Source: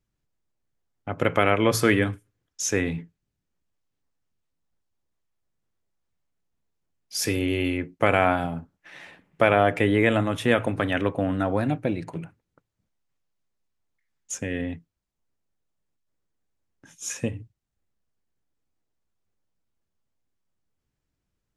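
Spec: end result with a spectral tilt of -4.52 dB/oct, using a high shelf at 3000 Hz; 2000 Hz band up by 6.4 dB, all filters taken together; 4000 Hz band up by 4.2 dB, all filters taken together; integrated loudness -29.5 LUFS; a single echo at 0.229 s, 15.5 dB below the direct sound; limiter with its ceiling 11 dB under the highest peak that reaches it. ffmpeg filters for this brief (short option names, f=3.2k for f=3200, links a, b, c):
-af "equalizer=f=2k:t=o:g=8,highshelf=f=3k:g=-6,equalizer=f=4k:t=o:g=7.5,alimiter=limit=-12dB:level=0:latency=1,aecho=1:1:229:0.168,volume=-3.5dB"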